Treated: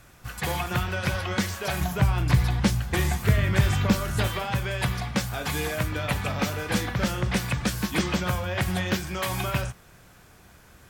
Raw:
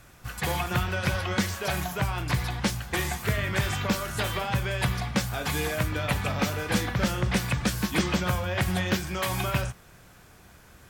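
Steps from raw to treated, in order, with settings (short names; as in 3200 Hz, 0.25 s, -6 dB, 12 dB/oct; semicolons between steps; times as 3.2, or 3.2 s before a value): 1.81–4.28 low shelf 260 Hz +9 dB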